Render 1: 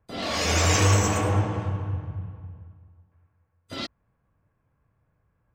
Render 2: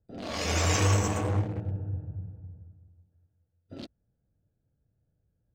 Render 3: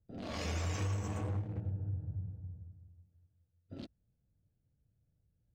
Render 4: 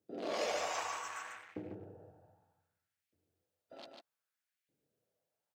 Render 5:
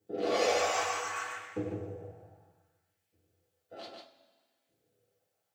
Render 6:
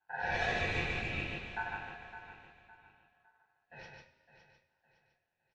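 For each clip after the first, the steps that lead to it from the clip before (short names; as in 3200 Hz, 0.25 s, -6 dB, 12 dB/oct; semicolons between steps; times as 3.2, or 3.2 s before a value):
Wiener smoothing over 41 samples; gain -4 dB
tone controls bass +6 dB, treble -3 dB; compressor 4:1, threshold -27 dBFS, peak gain reduction 10.5 dB; gain -7 dB
LFO high-pass saw up 0.64 Hz 310–2400 Hz; on a send: echo 0.146 s -4 dB; on the sum: gain +1.5 dB
two-slope reverb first 0.22 s, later 1.6 s, from -19 dB, DRR -6.5 dB
speaker cabinet 200–3800 Hz, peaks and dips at 300 Hz +3 dB, 590 Hz -7 dB, 850 Hz -4 dB, 1300 Hz +9 dB, 2000 Hz -6 dB, 3600 Hz -8 dB; feedback echo 0.56 s, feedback 34%, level -12 dB; ring modulator 1200 Hz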